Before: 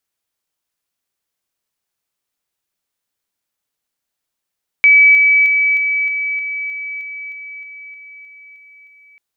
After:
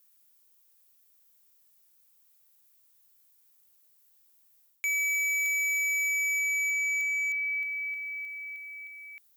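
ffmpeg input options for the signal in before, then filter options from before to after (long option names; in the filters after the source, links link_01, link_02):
-f lavfi -i "aevalsrc='pow(10,(-5-3*floor(t/0.31))/20)*sin(2*PI*2290*t)':duration=4.34:sample_rate=44100"
-af "aemphasis=mode=production:type=50fm,areverse,acompressor=threshold=-16dB:ratio=8,areverse,asoftclip=type=hard:threshold=-27.5dB"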